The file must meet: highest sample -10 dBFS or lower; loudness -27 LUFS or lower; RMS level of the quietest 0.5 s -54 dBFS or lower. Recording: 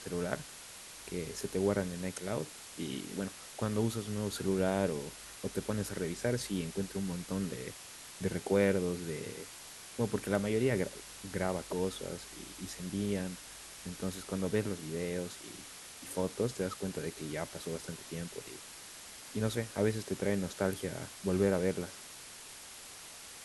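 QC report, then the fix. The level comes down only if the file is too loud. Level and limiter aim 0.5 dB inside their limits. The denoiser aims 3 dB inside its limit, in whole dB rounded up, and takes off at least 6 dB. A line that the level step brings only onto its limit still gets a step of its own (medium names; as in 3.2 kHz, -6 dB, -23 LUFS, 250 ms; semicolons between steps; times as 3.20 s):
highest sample -15.0 dBFS: pass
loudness -36.0 LUFS: pass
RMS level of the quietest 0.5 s -50 dBFS: fail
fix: noise reduction 7 dB, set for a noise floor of -50 dBFS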